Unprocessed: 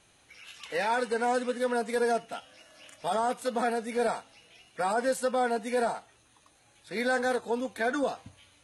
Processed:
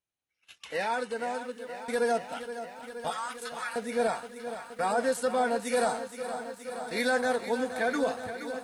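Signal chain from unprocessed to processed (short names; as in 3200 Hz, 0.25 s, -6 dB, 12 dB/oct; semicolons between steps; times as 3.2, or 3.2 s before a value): 3.1–3.76 steep high-pass 980 Hz 48 dB/oct; 5.61–7.1 high shelf 3500 Hz +8.5 dB; gate -46 dBFS, range -32 dB; 0.61–1.88 fade out; lo-fi delay 0.472 s, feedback 80%, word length 10-bit, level -11 dB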